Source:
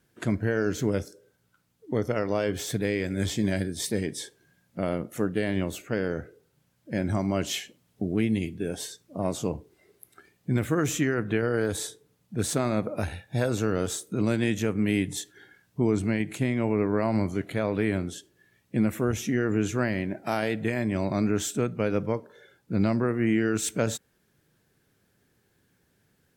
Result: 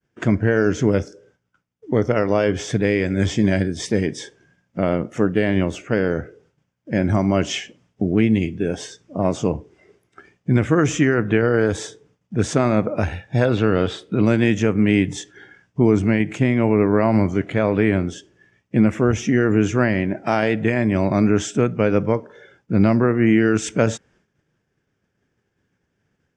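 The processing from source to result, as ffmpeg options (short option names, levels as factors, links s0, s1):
-filter_complex "[0:a]asettb=1/sr,asplit=3[s0][s1][s2];[s0]atrim=end=13.454[s3];[s1]atrim=start=13.45:end=14.26,asetpts=PTS-STARTPTS,afade=t=in:d=0.004:c=qsin,afade=t=out:st=0.806:d=0.004:c=qsin,highshelf=f=5000:t=q:w=3:g=-8.5[s4];[s2]atrim=start=14.256[s5];[s3][s4]acrossfade=d=0.004:c1=hsin:c2=qsin[s6];[s6][s5]acrossfade=d=0.004:c1=qsin:c2=hsin,lowpass=f=6200:w=0.5412,lowpass=f=6200:w=1.3066,agate=range=0.0224:threshold=0.001:ratio=3:detection=peak,equalizer=f=4100:t=o:w=0.33:g=-13,volume=2.66"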